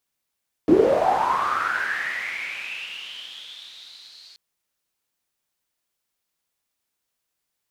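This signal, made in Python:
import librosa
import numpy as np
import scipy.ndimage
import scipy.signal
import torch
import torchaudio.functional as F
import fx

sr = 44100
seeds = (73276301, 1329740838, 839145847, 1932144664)

y = fx.riser_noise(sr, seeds[0], length_s=3.68, colour='pink', kind='bandpass', start_hz=290.0, end_hz=4400.0, q=8.8, swell_db=-31.5, law='linear')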